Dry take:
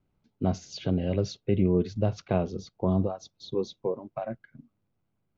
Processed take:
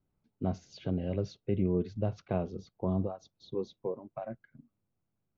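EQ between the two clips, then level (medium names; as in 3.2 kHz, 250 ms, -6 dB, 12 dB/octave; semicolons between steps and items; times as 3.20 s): treble shelf 3.8 kHz -10 dB; -5.5 dB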